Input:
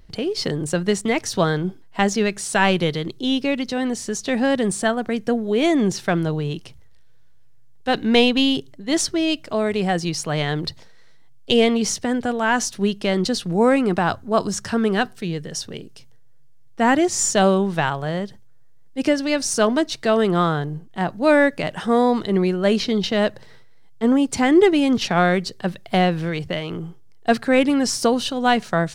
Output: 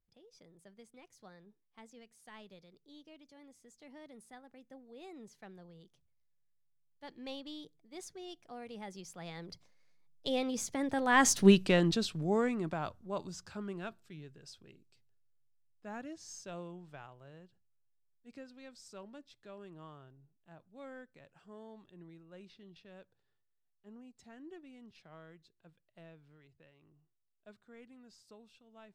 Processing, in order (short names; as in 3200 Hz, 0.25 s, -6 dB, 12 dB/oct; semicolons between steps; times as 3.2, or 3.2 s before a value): Doppler pass-by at 11.44, 37 m/s, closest 6.3 m